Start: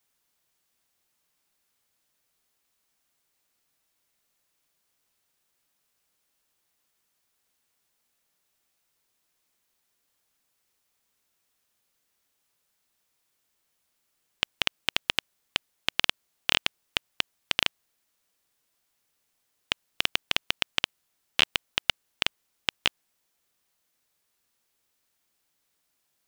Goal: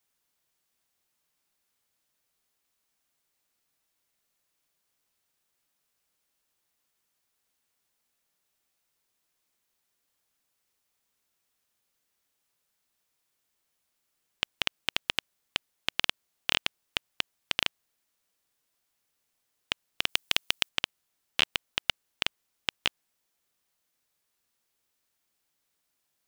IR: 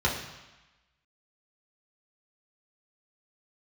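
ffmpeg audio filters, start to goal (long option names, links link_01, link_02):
-filter_complex "[0:a]asettb=1/sr,asplit=3[link_01][link_02][link_03];[link_01]atrim=end=20.094[link_04];[link_02]atrim=start=20.09:end=20.69,asetpts=PTS-STARTPTS,afade=type=in:duration=0.004:curve=qsin,afade=type=out:start_time=0.596:duration=0.004:curve=qsin,highshelf=frequency=4200:gain=10[link_05];[link_03]atrim=start=20.686[link_06];[link_04][link_05]acrossfade=duration=0.004:curve1=hsin:curve2=qsin[link_07];[link_07][link_06]acrossfade=duration=0.004:curve1=qsin:curve2=hsin,volume=-3dB"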